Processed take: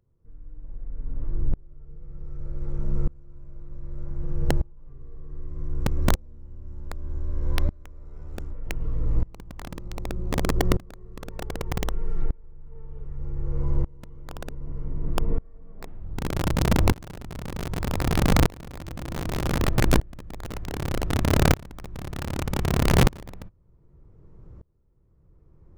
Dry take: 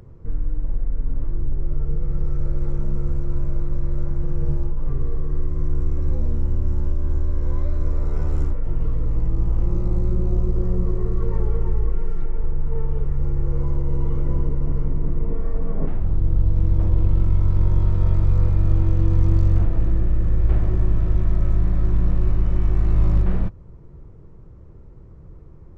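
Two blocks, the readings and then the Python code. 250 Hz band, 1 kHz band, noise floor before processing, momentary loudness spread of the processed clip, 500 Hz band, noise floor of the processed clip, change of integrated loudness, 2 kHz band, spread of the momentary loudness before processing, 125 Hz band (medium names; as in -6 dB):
0.0 dB, +8.0 dB, -42 dBFS, 21 LU, +1.5 dB, -56 dBFS, -4.0 dB, no reading, 8 LU, -6.5 dB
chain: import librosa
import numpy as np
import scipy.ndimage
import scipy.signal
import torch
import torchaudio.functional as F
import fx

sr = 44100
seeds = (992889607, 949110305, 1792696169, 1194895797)

y = (np.mod(10.0 ** (10.5 / 20.0) * x + 1.0, 2.0) - 1.0) / 10.0 ** (10.5 / 20.0)
y = fx.tremolo_decay(y, sr, direction='swelling', hz=0.65, depth_db=27)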